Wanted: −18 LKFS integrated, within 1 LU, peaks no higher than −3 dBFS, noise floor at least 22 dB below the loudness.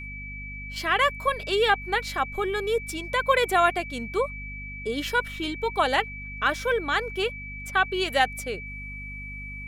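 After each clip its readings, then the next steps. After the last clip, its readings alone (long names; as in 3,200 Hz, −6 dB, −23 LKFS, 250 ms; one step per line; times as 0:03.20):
mains hum 50 Hz; hum harmonics up to 250 Hz; level of the hum −38 dBFS; interfering tone 2,300 Hz; level of the tone −37 dBFS; integrated loudness −25.5 LKFS; sample peak −8.0 dBFS; target loudness −18.0 LKFS
→ hum removal 50 Hz, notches 5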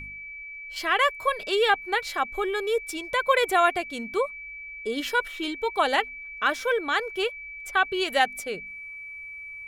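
mains hum none found; interfering tone 2,300 Hz; level of the tone −37 dBFS
→ notch filter 2,300 Hz, Q 30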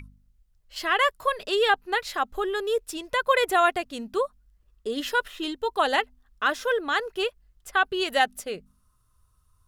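interfering tone none found; integrated loudness −26.0 LKFS; sample peak −8.0 dBFS; target loudness −18.0 LKFS
→ level +8 dB
brickwall limiter −3 dBFS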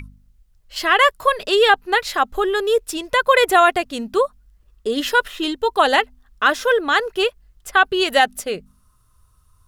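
integrated loudness −18.0 LKFS; sample peak −3.0 dBFS; background noise floor −58 dBFS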